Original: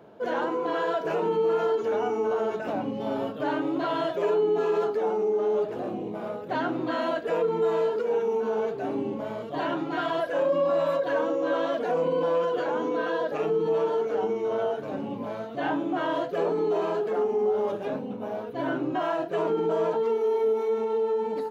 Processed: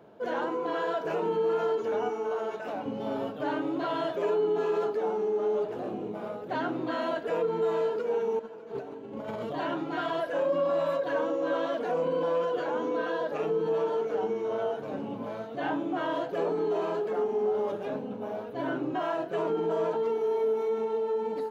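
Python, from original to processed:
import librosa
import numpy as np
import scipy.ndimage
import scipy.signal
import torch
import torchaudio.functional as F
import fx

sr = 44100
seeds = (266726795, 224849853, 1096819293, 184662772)

y = fx.low_shelf(x, sr, hz=270.0, db=-11.5, at=(2.09, 2.86))
y = fx.over_compress(y, sr, threshold_db=-35.0, ratio=-0.5, at=(8.39, 9.53))
y = fx.echo_feedback(y, sr, ms=599, feedback_pct=58, wet_db=-18.5)
y = y * 10.0 ** (-3.0 / 20.0)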